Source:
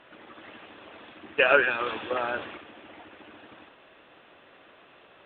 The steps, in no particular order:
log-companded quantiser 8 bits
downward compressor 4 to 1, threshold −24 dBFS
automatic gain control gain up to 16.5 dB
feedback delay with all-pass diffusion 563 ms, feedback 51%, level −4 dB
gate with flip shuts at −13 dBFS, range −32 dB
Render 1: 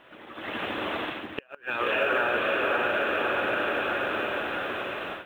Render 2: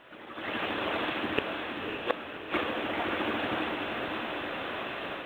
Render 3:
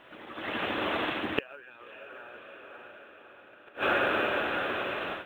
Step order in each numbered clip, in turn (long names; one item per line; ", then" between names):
feedback delay with all-pass diffusion, then log-companded quantiser, then automatic gain control, then downward compressor, then gate with flip
downward compressor, then automatic gain control, then gate with flip, then feedback delay with all-pass diffusion, then log-companded quantiser
feedback delay with all-pass diffusion, then downward compressor, then automatic gain control, then log-companded quantiser, then gate with flip